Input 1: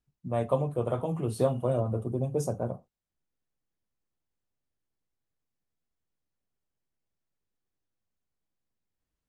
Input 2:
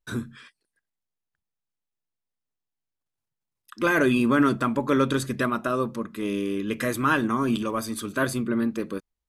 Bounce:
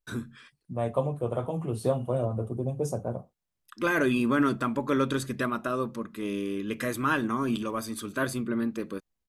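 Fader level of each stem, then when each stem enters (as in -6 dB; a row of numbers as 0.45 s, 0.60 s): -0.5 dB, -4.0 dB; 0.45 s, 0.00 s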